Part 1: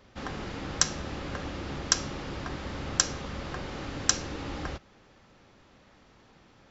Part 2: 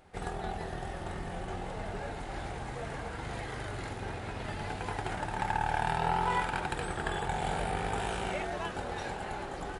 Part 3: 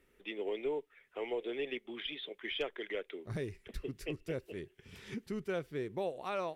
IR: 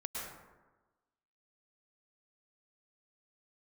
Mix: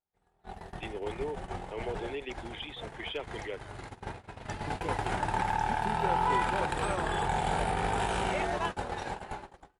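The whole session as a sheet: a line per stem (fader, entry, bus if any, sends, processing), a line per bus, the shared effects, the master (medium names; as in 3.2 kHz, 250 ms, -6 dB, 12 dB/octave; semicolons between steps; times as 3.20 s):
-14.0 dB, 1.50 s, bus A, no send, compression 2.5:1, threshold -40 dBFS, peak gain reduction 15.5 dB
-3.0 dB, 0.00 s, bus A, no send, level rider gain up to 7.5 dB
-0.5 dB, 0.55 s, muted 3.61–4.67 s, no bus, no send, none
bus A: 0.0 dB, gate -31 dBFS, range -35 dB; peak limiter -21 dBFS, peak gain reduction 8.5 dB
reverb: none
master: peaking EQ 940 Hz +4.5 dB 0.33 oct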